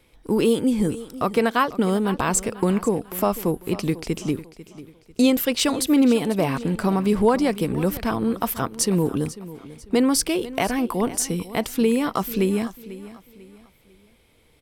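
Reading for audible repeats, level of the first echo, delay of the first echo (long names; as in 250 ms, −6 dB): 3, −16.5 dB, 495 ms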